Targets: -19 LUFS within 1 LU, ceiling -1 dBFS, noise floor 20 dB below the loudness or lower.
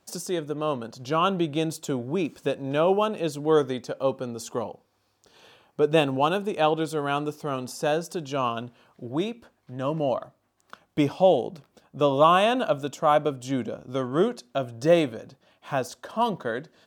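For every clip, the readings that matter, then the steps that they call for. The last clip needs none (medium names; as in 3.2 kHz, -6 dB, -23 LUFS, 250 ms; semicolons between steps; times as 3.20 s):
loudness -26.0 LUFS; peak level -5.0 dBFS; loudness target -19.0 LUFS
-> trim +7 dB; peak limiter -1 dBFS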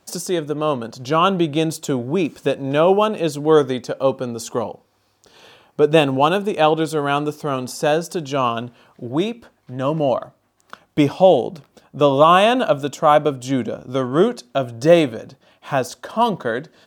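loudness -19.0 LUFS; peak level -1.0 dBFS; noise floor -63 dBFS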